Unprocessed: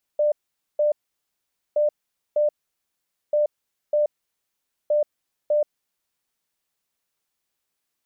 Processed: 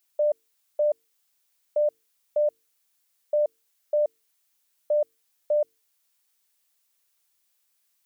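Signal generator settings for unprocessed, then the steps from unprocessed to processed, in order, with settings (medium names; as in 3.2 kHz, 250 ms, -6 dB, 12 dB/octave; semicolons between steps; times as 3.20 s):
beep pattern sine 596 Hz, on 0.13 s, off 0.47 s, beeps 2, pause 0.84 s, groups 4, -16.5 dBFS
tilt EQ +2.5 dB/octave; hum notches 50/100/150/200/250/300/350/400/450 Hz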